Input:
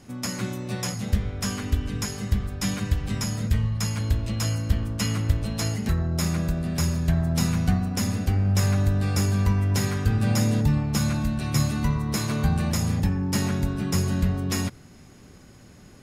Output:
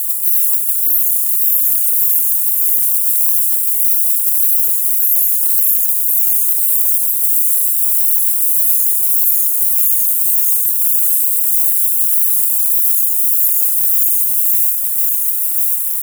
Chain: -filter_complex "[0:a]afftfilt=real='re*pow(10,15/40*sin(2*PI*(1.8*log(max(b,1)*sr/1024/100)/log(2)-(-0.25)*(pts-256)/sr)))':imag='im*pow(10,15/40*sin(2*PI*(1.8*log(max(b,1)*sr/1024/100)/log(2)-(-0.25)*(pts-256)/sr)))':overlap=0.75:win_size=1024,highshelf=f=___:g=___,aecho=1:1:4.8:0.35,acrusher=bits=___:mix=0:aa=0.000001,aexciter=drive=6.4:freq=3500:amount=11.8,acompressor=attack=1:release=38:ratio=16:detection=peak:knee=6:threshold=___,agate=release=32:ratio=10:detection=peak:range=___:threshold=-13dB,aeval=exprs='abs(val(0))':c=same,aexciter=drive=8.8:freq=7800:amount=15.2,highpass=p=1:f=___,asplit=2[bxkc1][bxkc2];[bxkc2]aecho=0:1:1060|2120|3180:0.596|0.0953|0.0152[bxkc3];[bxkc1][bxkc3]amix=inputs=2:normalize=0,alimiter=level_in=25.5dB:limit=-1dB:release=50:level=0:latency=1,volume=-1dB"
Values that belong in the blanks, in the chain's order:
9300, 7, 7, -15dB, -40dB, 660